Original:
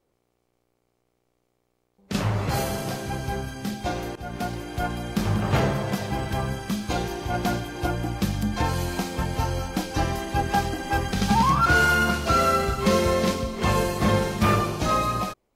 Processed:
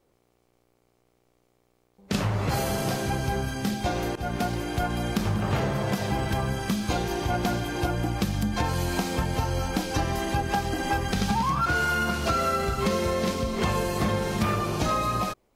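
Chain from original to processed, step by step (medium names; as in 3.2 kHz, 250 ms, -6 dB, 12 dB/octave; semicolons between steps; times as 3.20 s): compression, threshold -27 dBFS, peak gain reduction 11 dB; trim +4.5 dB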